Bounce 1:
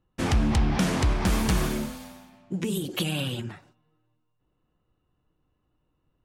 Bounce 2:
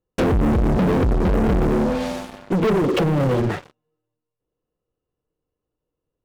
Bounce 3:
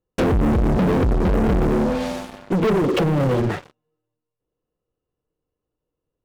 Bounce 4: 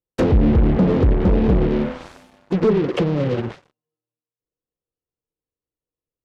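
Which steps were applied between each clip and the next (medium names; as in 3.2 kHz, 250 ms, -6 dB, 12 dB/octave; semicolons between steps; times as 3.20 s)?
low-pass that closes with the level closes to 400 Hz, closed at -23.5 dBFS; peaking EQ 470 Hz +13 dB 0.7 oct; waveshaping leveller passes 5; trim -2 dB
no audible change
Chebyshev shaper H 3 -7 dB, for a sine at -14.5 dBFS; low-pass that closes with the level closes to 2.6 kHz, closed at -15 dBFS; upward expansion 1.5:1, over -29 dBFS; trim +4.5 dB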